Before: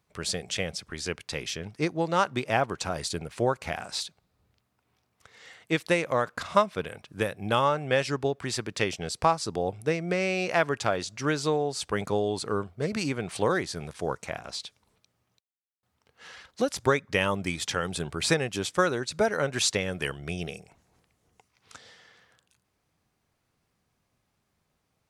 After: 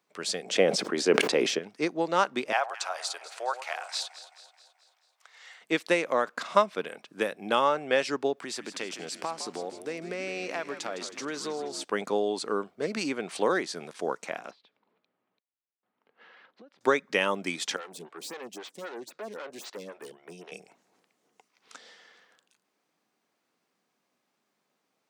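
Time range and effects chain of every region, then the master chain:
0:00.45–0:01.59: parametric band 400 Hz +12.5 dB 2.9 octaves + level that may fall only so fast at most 56 dB per second
0:02.52–0:05.61: high-pass filter 670 Hz 24 dB per octave + delay that swaps between a low-pass and a high-pass 108 ms, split 1,100 Hz, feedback 72%, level −12 dB
0:08.37–0:11.84: high-shelf EQ 10,000 Hz +6.5 dB + downward compressor 2.5 to 1, threshold −33 dBFS + echo with shifted repeats 159 ms, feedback 62%, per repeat −93 Hz, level −11 dB
0:14.51–0:16.81: downward compressor 16 to 1, threshold −46 dBFS + high-frequency loss of the air 390 metres
0:17.76–0:20.52: tube saturation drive 34 dB, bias 0.65 + phaser with staggered stages 3.8 Hz
whole clip: high-pass filter 220 Hz 24 dB per octave; parametric band 11,000 Hz −6 dB 0.5 octaves

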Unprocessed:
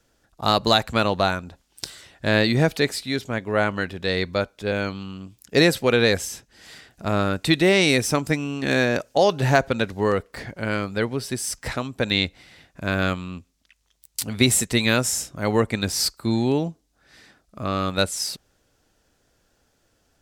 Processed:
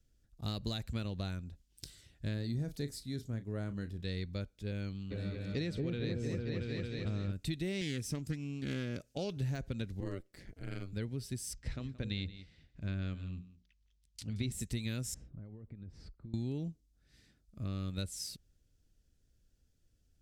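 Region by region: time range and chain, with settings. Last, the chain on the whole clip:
0:02.34–0:04.02: parametric band 2,600 Hz −10 dB 1 octave + double-tracking delay 35 ms −12.5 dB
0:05.10–0:07.31: low-pass filter 5,000 Hz + echo whose low-pass opens from repeat to repeat 226 ms, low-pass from 750 Hz, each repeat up 1 octave, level 0 dB + steady tone 2,300 Hz −44 dBFS
0:07.81–0:09.37: high-pass filter 86 Hz 6 dB per octave + highs frequency-modulated by the lows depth 0.17 ms
0:10.00–0:10.93: high-pass filter 180 Hz + ring modulation 94 Hz
0:11.53–0:14.52: low-pass filter 5,100 Hz + mains-hum notches 60/120/180/240/300/360/420/480 Hz + single-tap delay 175 ms −17.5 dB
0:15.14–0:16.34: low-pass filter 1,200 Hz + downward compressor 16 to 1, threshold −35 dBFS
whole clip: de-essing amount 35%; guitar amp tone stack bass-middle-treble 10-0-1; downward compressor, threshold −39 dBFS; level +6.5 dB

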